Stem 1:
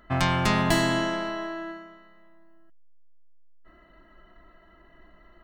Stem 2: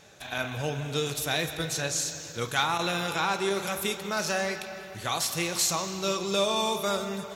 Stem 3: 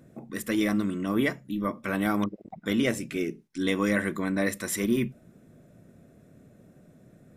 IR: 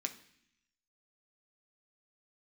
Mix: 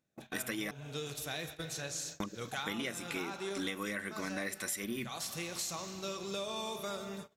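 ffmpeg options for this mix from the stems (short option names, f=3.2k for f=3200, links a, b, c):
-filter_complex "[1:a]volume=-9.5dB[a];[2:a]tiltshelf=f=870:g=-5.5,volume=-0.5dB,asplit=3[b][c][d];[b]atrim=end=0.71,asetpts=PTS-STARTPTS,afade=t=out:st=0.706:d=0.004:c=hsin[e];[c]atrim=start=0.71:end=2.2,asetpts=PTS-STARTPTS,volume=0[f];[d]atrim=start=2.2,asetpts=PTS-STARTPTS,afade=t=in:d=0.004:c=hsin[g];[e][f][g]concat=n=3:v=0:a=1[h];[a][h]amix=inputs=2:normalize=0,agate=range=-27dB:threshold=-44dB:ratio=16:detection=peak,equalizer=f=930:t=o:w=0.35:g=-2,acompressor=threshold=-34dB:ratio=12"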